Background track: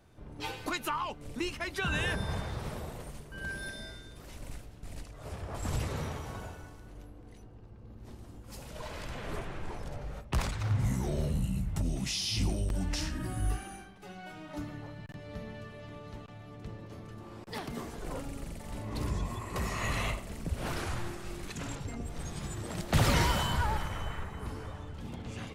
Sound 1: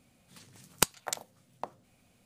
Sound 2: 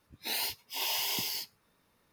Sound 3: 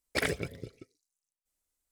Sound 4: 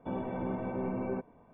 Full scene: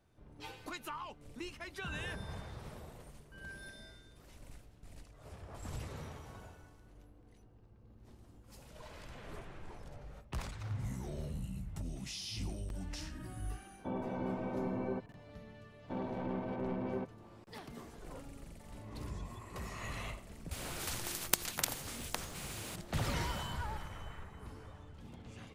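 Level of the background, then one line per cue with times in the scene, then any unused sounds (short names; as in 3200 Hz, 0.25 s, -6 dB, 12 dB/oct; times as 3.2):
background track -10 dB
13.79 add 4 -3 dB
15.84 add 4 -3.5 dB + tracing distortion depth 0.09 ms
20.51 add 1 -2 dB + spectral compressor 4:1
not used: 2, 3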